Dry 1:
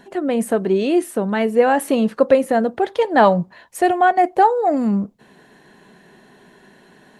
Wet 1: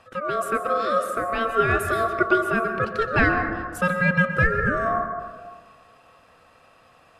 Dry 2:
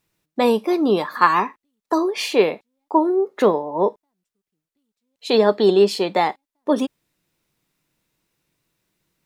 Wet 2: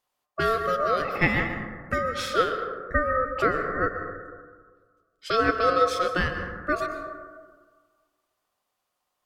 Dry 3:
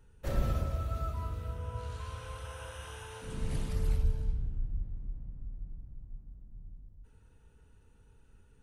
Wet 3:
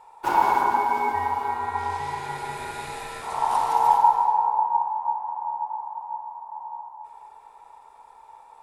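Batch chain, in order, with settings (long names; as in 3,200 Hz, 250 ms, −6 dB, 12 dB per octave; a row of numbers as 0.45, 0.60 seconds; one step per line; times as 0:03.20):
ring modulation 900 Hz
dense smooth reverb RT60 1.6 s, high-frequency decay 0.3×, pre-delay 110 ms, DRR 6.5 dB
normalise the peak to −6 dBFS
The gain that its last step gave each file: −3.5, −4.5, +12.0 decibels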